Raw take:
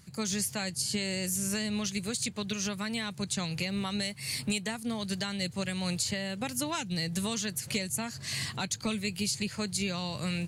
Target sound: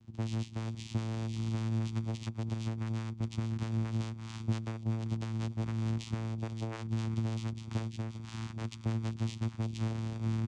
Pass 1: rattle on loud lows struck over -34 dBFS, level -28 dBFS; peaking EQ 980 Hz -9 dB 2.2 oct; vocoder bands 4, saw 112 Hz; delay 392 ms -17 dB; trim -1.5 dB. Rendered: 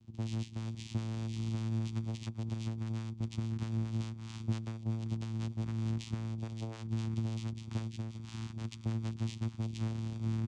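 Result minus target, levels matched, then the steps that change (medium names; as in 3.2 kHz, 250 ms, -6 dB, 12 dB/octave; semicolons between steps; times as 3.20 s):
1 kHz band -3.5 dB
remove: peaking EQ 980 Hz -9 dB 2.2 oct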